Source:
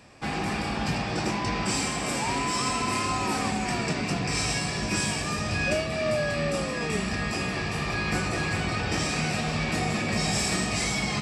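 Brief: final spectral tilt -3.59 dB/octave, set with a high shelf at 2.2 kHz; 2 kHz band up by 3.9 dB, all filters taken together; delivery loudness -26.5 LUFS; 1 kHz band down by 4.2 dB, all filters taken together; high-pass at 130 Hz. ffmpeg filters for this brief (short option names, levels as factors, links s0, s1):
-af "highpass=130,equalizer=f=1000:t=o:g=-7,equalizer=f=2000:t=o:g=8.5,highshelf=f=2200:g=-3.5,volume=1.06"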